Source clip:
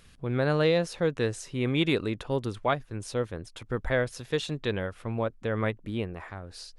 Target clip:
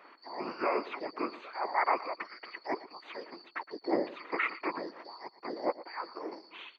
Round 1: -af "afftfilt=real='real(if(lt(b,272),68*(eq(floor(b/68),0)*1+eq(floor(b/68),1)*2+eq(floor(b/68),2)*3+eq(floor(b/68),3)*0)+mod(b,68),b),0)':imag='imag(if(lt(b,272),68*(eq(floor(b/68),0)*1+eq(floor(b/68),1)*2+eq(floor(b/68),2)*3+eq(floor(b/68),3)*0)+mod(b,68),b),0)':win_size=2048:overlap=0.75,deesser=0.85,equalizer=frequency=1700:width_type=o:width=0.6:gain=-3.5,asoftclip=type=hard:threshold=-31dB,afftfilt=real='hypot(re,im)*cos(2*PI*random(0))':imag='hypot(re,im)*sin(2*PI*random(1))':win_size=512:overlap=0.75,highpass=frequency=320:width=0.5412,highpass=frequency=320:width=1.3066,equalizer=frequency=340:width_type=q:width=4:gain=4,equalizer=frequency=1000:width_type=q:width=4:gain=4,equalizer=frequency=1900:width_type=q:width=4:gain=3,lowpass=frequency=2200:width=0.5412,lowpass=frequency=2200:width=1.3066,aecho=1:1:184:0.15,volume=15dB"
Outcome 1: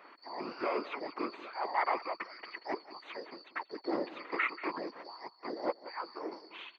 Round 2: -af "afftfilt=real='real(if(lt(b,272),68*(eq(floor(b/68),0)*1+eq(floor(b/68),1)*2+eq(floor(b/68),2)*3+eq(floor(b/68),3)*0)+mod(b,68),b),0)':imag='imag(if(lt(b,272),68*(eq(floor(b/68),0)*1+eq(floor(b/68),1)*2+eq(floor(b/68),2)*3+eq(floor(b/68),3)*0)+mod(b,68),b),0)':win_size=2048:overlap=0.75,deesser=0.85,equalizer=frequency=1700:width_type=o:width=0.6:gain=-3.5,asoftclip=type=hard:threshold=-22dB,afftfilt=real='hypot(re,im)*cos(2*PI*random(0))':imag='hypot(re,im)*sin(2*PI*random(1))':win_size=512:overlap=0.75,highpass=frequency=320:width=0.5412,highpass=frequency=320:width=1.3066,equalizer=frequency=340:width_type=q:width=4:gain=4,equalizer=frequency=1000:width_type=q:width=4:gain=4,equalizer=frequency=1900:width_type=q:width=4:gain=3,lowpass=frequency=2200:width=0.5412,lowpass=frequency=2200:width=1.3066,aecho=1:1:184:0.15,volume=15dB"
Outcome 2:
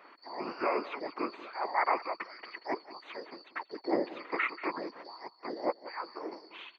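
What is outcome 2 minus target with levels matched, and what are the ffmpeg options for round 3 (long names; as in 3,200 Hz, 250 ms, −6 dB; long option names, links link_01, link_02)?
echo 68 ms late
-af "afftfilt=real='real(if(lt(b,272),68*(eq(floor(b/68),0)*1+eq(floor(b/68),1)*2+eq(floor(b/68),2)*3+eq(floor(b/68),3)*0)+mod(b,68),b),0)':imag='imag(if(lt(b,272),68*(eq(floor(b/68),0)*1+eq(floor(b/68),1)*2+eq(floor(b/68),2)*3+eq(floor(b/68),3)*0)+mod(b,68),b),0)':win_size=2048:overlap=0.75,deesser=0.85,equalizer=frequency=1700:width_type=o:width=0.6:gain=-3.5,asoftclip=type=hard:threshold=-22dB,afftfilt=real='hypot(re,im)*cos(2*PI*random(0))':imag='hypot(re,im)*sin(2*PI*random(1))':win_size=512:overlap=0.75,highpass=frequency=320:width=0.5412,highpass=frequency=320:width=1.3066,equalizer=frequency=340:width_type=q:width=4:gain=4,equalizer=frequency=1000:width_type=q:width=4:gain=4,equalizer=frequency=1900:width_type=q:width=4:gain=3,lowpass=frequency=2200:width=0.5412,lowpass=frequency=2200:width=1.3066,aecho=1:1:116:0.15,volume=15dB"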